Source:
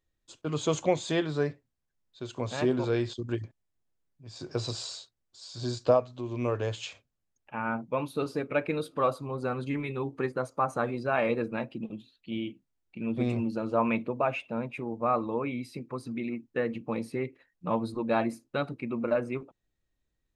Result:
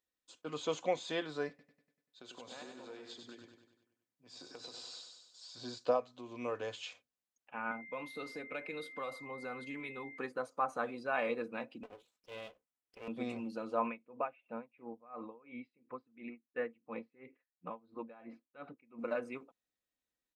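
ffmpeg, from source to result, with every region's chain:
-filter_complex "[0:a]asettb=1/sr,asplit=3[s0][s1][s2];[s0]atrim=end=1.494[s3];[s1]atrim=start=1.49:end=5.49,asetpts=PTS-STARTPTS,afade=t=in:d=0.004:c=qsin,afade=t=out:st=3.996:d=0.004:c=qsin,highpass=140,acompressor=threshold=0.0141:ratio=10:attack=3.2:release=140:knee=1:detection=peak,aecho=1:1:97|194|291|388|485|582|679:0.501|0.271|0.146|0.0789|0.0426|0.023|0.0124,atrim=end_sample=176400[s4];[s2]atrim=start=5.486[s5];[s3][s4]acrossfade=d=0.004:c1=hsin:c2=qsin[s6];[s6][s5]acrossfade=d=0.004:c1=qsin:c2=hsin,asettb=1/sr,asplit=3[s7][s8][s9];[s7]atrim=end=7.714[s10];[s8]atrim=start=7.71:end=10.18,asetpts=PTS-STARTPTS,afade=t=in:d=0.004:c=qsin,afade=t=out:st=2.466:d=0.004:c=qsin,acrossover=split=130|3000[s11][s12][s13];[s12]acompressor=threshold=0.0282:ratio=4:attack=3.2:release=140:knee=2.83:detection=peak[s14];[s11][s14][s13]amix=inputs=3:normalize=0,aeval=exprs='val(0)+0.00891*sin(2*PI*2100*n/s)':c=same[s15];[s9]atrim=start=10.176[s16];[s10][s15]acrossfade=d=0.004:c1=hsin:c2=qsin[s17];[s17][s16]acrossfade=d=0.004:c1=qsin:c2=hsin,asettb=1/sr,asplit=3[s18][s19][s20];[s18]atrim=end=11.834[s21];[s19]atrim=start=11.83:end=13.08,asetpts=PTS-STARTPTS,afade=t=in:d=0.004:c=qsin,afade=t=out:st=1.246:d=0.004:c=qsin,equalizer=f=4400:t=o:w=0.42:g=-13.5,aeval=exprs='abs(val(0))':c=same[s22];[s20]atrim=start=13.076[s23];[s21][s22]acrossfade=d=0.004:c1=hsin:c2=qsin[s24];[s24][s23]acrossfade=d=0.004:c1=qsin:c2=hsin,asettb=1/sr,asplit=3[s25][s26][s27];[s25]atrim=end=13.864[s28];[s26]atrim=start=13.86:end=18.99,asetpts=PTS-STARTPTS,afade=t=in:d=0.004:c=qsin,afade=t=out:st=5.126:d=0.004:c=qsin,lowpass=f=2900:w=0.5412,lowpass=f=2900:w=1.3066,aeval=exprs='val(0)*pow(10,-25*(0.5-0.5*cos(2*PI*2.9*n/s))/20)':c=same[s29];[s27]atrim=start=18.986[s30];[s28][s29]acrossfade=d=0.004:c1=hsin:c2=qsin[s31];[s31][s30]acrossfade=d=0.004:c1=qsin:c2=hsin,highpass=f=510:p=1,acrossover=split=5500[s32][s33];[s33]acompressor=threshold=0.002:ratio=4:attack=1:release=60[s34];[s32][s34]amix=inputs=2:normalize=0,aecho=1:1:4:0.37,volume=0.531"

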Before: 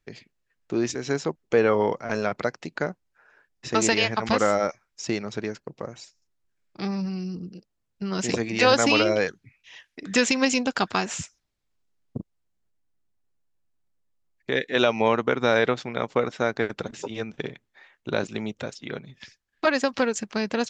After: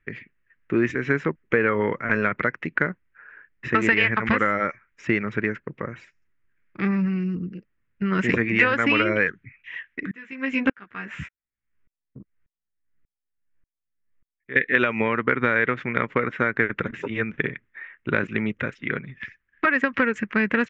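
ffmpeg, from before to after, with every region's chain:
-filter_complex "[0:a]asettb=1/sr,asplit=3[s0][s1][s2];[s0]atrim=end=10.114[s3];[s1]atrim=start=10.11:end=14.56,asetpts=PTS-STARTPTS,afade=t=in:d=0.004:c=qsin,afade=t=out:st=4.446:d=0.004:c=qsin,lowpass=6300,asplit=2[s4][s5];[s5]adelay=15,volume=0.794[s6];[s4][s6]amix=inputs=2:normalize=0,atrim=end_sample=196245,aeval=exprs='val(0)*pow(10,-37*if(lt(mod(-1.7*n/s,1),2*abs(-1.7)/1000),1-mod(-1.7*n/s,1)/(2*abs(-1.7)/1000),(mod(-1.7*n/s,1)-2*abs(-1.7)/1000)/(1-2*abs(-1.7)/1000))/20)':c=same[s7];[s2]atrim=start=14.556[s8];[s3][s7]acrossfade=d=0.004:c1=hsin:c2=qsin[s9];[s9][s8]acrossfade=d=0.004:c1=qsin:c2=hsin,firequalizer=gain_entry='entry(430,0);entry(1900,10);entry(4400,-24)':delay=0.05:min_phase=1,acompressor=threshold=0.112:ratio=6,equalizer=f=750:w=1.6:g=-14.5,volume=2.11"

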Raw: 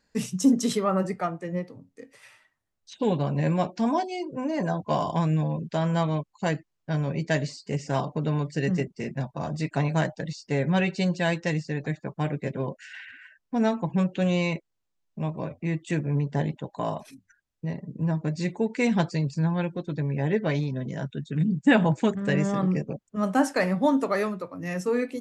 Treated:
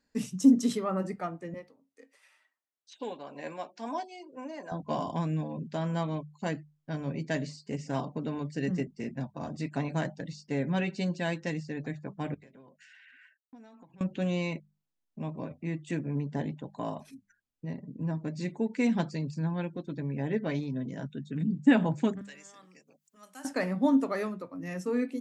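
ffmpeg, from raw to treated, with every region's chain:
-filter_complex "[0:a]asettb=1/sr,asplit=3[s0][s1][s2];[s0]atrim=end=1.544[s3];[s1]atrim=start=1.54:end=4.72,asetpts=PTS-STARTPTS,afade=t=in:d=0.004:c=qsin,afade=t=out:st=3.176:d=0.004:c=qsin,highpass=520,tremolo=f=2.1:d=0.39[s4];[s2]atrim=start=4.716[s5];[s3][s4]acrossfade=d=0.004:c1=hsin:c2=qsin[s6];[s6][s5]acrossfade=d=0.004:c1=qsin:c2=hsin,asettb=1/sr,asplit=3[s7][s8][s9];[s7]atrim=end=12.344[s10];[s8]atrim=start=12.34:end=14.01,asetpts=PTS-STARTPTS,afade=t=in:d=0.004:c=qsin,afade=t=out:st=1.666:d=0.004:c=qsin,agate=range=0.0224:threshold=0.00316:ratio=3:release=100:detection=peak,lowshelf=f=480:g=-10,acompressor=threshold=0.00562:ratio=12:attack=3.2:release=140:knee=1:detection=peak[s11];[s9]atrim=start=14.006[s12];[s10][s11]acrossfade=d=0.004:c1=hsin:c2=qsin[s13];[s13][s12]acrossfade=d=0.004:c1=qsin:c2=hsin,asettb=1/sr,asplit=3[s14][s15][s16];[s14]atrim=end=22.214[s17];[s15]atrim=start=22.21:end=23.45,asetpts=PTS-STARTPTS,afade=t=in:d=0.004:c=qsin,afade=t=out:st=1.236:d=0.004:c=qsin,aderivative,acompressor=mode=upward:threshold=0.00355:ratio=2.5:attack=3.2:release=140:knee=2.83:detection=peak[s18];[s16]atrim=start=23.446[s19];[s17][s18]acrossfade=d=0.004:c1=hsin:c2=qsin[s20];[s20][s19]acrossfade=d=0.004:c1=qsin:c2=hsin,equalizer=f=260:w=3.2:g=8,bandreject=f=50:t=h:w=6,bandreject=f=100:t=h:w=6,bandreject=f=150:t=h:w=6,bandreject=f=200:t=h:w=6,volume=0.447"

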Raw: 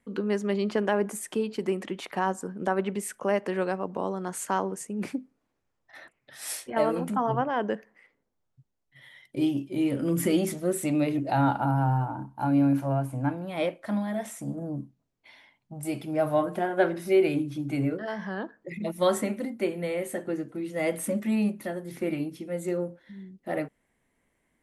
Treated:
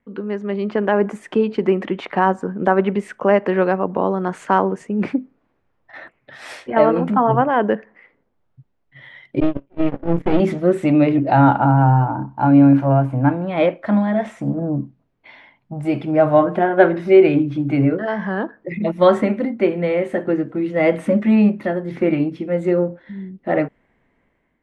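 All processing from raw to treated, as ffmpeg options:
-filter_complex "[0:a]asettb=1/sr,asplit=3[s0][s1][s2];[s0]atrim=end=9.404[s3];[s1]atrim=start=9.4:end=10.4,asetpts=PTS-STARTPTS,afade=t=in:d=0.004:c=qsin,afade=t=out:st=0.996:d=0.004:c=qsin,agate=range=0.0631:threshold=0.0447:ratio=16:release=100:detection=peak,highshelf=f=4300:g=-10.5,aeval=exprs='max(val(0),0)':c=same[s4];[s2]atrim=start=10.396[s5];[s3][s4]acrossfade=d=0.004:c1=hsin:c2=qsin[s6];[s6][s5]acrossfade=d=0.004:c1=qsin:c2=hsin,lowpass=2400,dynaudnorm=f=350:g=5:m=3.16,volume=1.26"

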